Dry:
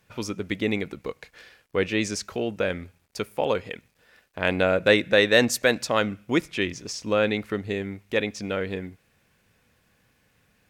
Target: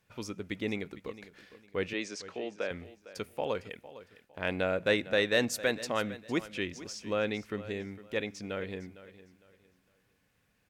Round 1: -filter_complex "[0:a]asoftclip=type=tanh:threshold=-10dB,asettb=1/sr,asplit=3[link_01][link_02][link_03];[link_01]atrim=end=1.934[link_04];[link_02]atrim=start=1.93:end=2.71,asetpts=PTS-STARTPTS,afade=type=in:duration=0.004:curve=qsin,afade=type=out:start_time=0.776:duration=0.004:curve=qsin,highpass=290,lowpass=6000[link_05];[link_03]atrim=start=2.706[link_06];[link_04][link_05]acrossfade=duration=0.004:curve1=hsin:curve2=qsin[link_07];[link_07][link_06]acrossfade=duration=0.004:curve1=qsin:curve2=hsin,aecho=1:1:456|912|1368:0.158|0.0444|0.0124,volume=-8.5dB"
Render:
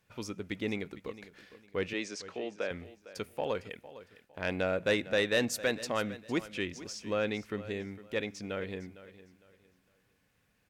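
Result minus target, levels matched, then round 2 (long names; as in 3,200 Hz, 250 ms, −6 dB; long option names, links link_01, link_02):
soft clipping: distortion +14 dB
-filter_complex "[0:a]asoftclip=type=tanh:threshold=-1.5dB,asettb=1/sr,asplit=3[link_01][link_02][link_03];[link_01]atrim=end=1.934[link_04];[link_02]atrim=start=1.93:end=2.71,asetpts=PTS-STARTPTS,afade=type=in:duration=0.004:curve=qsin,afade=type=out:start_time=0.776:duration=0.004:curve=qsin,highpass=290,lowpass=6000[link_05];[link_03]atrim=start=2.706[link_06];[link_04][link_05]acrossfade=duration=0.004:curve1=hsin:curve2=qsin[link_07];[link_07][link_06]acrossfade=duration=0.004:curve1=qsin:curve2=hsin,aecho=1:1:456|912|1368:0.158|0.0444|0.0124,volume=-8.5dB"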